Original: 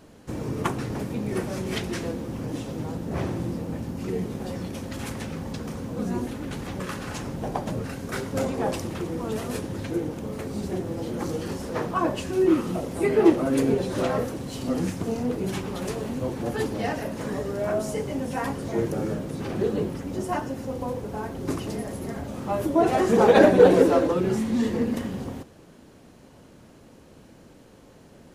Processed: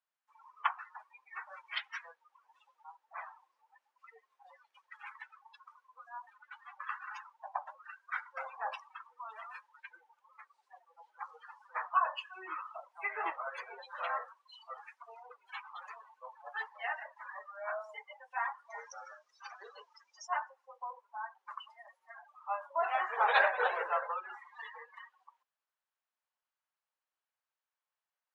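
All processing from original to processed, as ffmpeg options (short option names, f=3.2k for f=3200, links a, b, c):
-filter_complex "[0:a]asettb=1/sr,asplit=3[a][b][c];[a]atrim=end=18.704[d];[b]atrim=start=18.7:end=20.27,asetpts=PTS-STARTPTS,afade=t=in:d=0.004:c=qsin,afade=t=out:st=1.566:d=0.004:c=qsin,lowpass=9.7k,equalizer=f=5.8k:w=1.4:g=14[e];[c]atrim=start=20.266[f];[d][e]acrossfade=d=0.004:c1=hsin:c2=qsin[g];[g][f]acrossfade=d=0.004:c1=qsin:c2=hsin,highpass=f=950:w=0.5412,highpass=f=950:w=1.3066,aemphasis=mode=reproduction:type=50fm,afftdn=nr=33:nf=-37"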